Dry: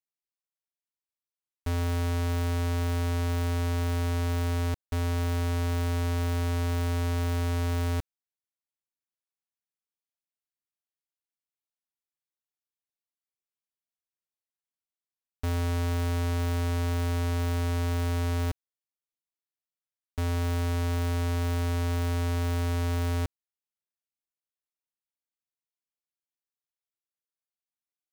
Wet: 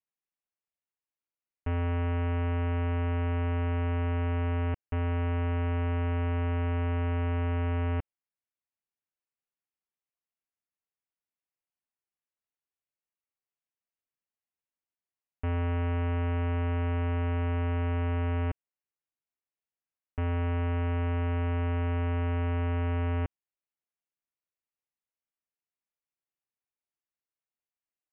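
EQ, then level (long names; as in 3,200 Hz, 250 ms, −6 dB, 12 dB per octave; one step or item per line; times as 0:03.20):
Chebyshev low-pass filter 2,900 Hz, order 6
high-frequency loss of the air 79 metres
0.0 dB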